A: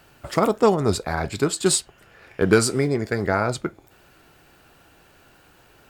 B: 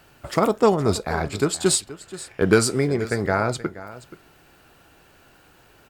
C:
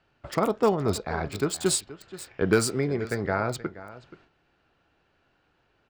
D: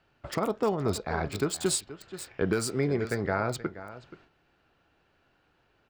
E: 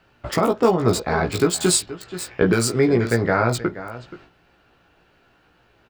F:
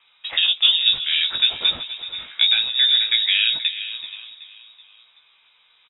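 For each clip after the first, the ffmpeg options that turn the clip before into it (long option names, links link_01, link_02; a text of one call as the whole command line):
ffmpeg -i in.wav -af "aecho=1:1:477:0.15" out.wav
ffmpeg -i in.wav -filter_complex "[0:a]agate=range=-9dB:threshold=-50dB:ratio=16:detection=peak,acrossover=split=790|5400[link_01][link_02][link_03];[link_03]acrusher=bits=5:mix=0:aa=0.000001[link_04];[link_01][link_02][link_04]amix=inputs=3:normalize=0,volume=-5dB" out.wav
ffmpeg -i in.wav -af "alimiter=limit=-15.5dB:level=0:latency=1:release=317" out.wav
ffmpeg -i in.wav -filter_complex "[0:a]asplit=2[link_01][link_02];[link_02]adelay=17,volume=-4dB[link_03];[link_01][link_03]amix=inputs=2:normalize=0,volume=8.5dB" out.wav
ffmpeg -i in.wav -filter_complex "[0:a]asplit=2[link_01][link_02];[link_02]adelay=379,lowpass=frequency=2800:poles=1,volume=-14.5dB,asplit=2[link_03][link_04];[link_04]adelay=379,lowpass=frequency=2800:poles=1,volume=0.48,asplit=2[link_05][link_06];[link_06]adelay=379,lowpass=frequency=2800:poles=1,volume=0.48,asplit=2[link_07][link_08];[link_08]adelay=379,lowpass=frequency=2800:poles=1,volume=0.48[link_09];[link_01][link_03][link_05][link_07][link_09]amix=inputs=5:normalize=0,lowpass=frequency=3300:width_type=q:width=0.5098,lowpass=frequency=3300:width_type=q:width=0.6013,lowpass=frequency=3300:width_type=q:width=0.9,lowpass=frequency=3300:width_type=q:width=2.563,afreqshift=-3900" out.wav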